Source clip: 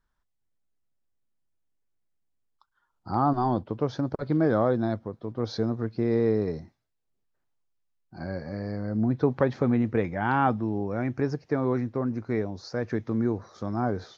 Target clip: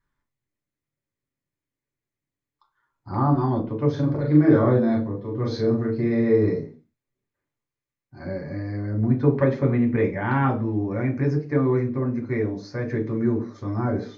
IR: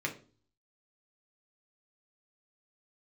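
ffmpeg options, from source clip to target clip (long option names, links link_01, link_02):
-filter_complex "[0:a]asettb=1/sr,asplit=3[link_01][link_02][link_03];[link_01]atrim=end=3.894[link_04];[link_02]atrim=start=3.89:end=6.54,asetpts=PTS-STARTPTS,afade=type=in:duration=0.004:curve=qsin,afade=type=out:start_time=2.646:duration=0.004:curve=qsin,asplit=2[link_05][link_06];[link_06]adelay=40,volume=-3dB[link_07];[link_05][link_07]amix=inputs=2:normalize=0,atrim=end_sample=116865[link_08];[link_03]atrim=start=6.536[link_09];[link_04][link_08]acrossfade=duration=0.004:curve1=hsin:curve2=qsin[link_10];[link_10][link_09]acrossfade=duration=0.004:curve1=qsin:curve2=hsin[link_11];[1:a]atrim=start_sample=2205,afade=type=out:start_time=0.31:duration=0.01,atrim=end_sample=14112[link_12];[link_11][link_12]afir=irnorm=-1:irlink=0,volume=-2dB"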